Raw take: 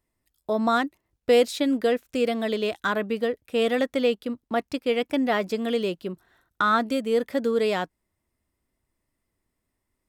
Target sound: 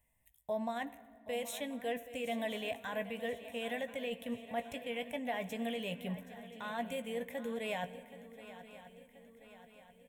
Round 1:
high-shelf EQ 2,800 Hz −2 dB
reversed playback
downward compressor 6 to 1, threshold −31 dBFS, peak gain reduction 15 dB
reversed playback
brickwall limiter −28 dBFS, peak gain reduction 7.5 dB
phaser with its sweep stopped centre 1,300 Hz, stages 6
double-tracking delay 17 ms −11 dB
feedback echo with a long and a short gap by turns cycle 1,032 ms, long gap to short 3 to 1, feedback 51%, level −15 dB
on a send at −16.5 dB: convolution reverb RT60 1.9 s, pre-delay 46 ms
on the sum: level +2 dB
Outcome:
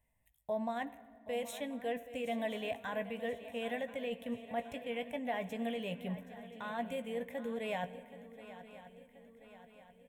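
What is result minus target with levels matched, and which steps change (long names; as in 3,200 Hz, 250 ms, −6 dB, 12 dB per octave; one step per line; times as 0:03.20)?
4,000 Hz band −3.0 dB
change: high-shelf EQ 2,800 Hz +5 dB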